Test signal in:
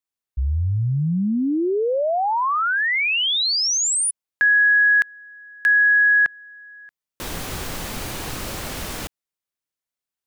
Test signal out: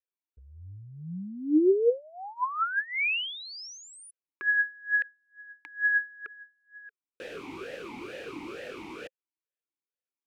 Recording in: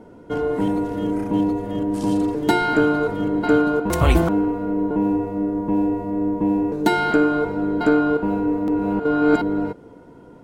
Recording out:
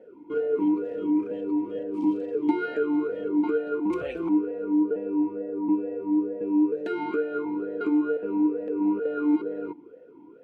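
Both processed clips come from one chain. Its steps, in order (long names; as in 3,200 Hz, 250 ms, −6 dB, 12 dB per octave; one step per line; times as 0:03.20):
downward compressor, threshold −18 dBFS
formant filter swept between two vowels e-u 2.2 Hz
level +4 dB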